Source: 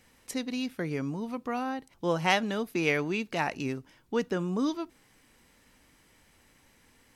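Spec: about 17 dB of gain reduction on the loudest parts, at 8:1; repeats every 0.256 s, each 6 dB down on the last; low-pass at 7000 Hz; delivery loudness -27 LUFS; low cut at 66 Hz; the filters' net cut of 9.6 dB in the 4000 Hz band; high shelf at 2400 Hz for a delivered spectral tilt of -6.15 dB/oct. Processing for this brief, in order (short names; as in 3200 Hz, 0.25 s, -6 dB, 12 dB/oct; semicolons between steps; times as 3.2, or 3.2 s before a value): HPF 66 Hz; LPF 7000 Hz; high shelf 2400 Hz -8 dB; bell 4000 Hz -6.5 dB; compressor 8:1, threshold -42 dBFS; feedback echo 0.256 s, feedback 50%, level -6 dB; gain +18.5 dB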